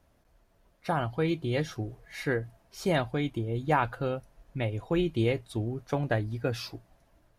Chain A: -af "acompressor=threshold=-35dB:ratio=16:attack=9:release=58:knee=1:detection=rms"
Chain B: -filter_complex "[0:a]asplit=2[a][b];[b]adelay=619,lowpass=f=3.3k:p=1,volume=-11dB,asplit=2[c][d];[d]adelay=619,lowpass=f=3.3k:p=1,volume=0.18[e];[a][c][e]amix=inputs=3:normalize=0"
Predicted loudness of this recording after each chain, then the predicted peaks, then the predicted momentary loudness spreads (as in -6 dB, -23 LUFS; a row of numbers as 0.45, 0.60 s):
-40.5, -31.0 LUFS; -25.0, -13.0 dBFS; 4, 10 LU